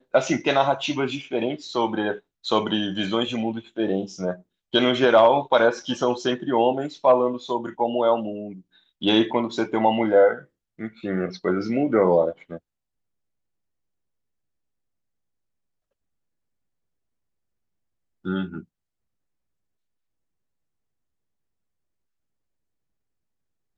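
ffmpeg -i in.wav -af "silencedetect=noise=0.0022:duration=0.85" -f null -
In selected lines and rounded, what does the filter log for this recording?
silence_start: 12.59
silence_end: 18.24 | silence_duration: 5.66
silence_start: 18.65
silence_end: 23.78 | silence_duration: 5.13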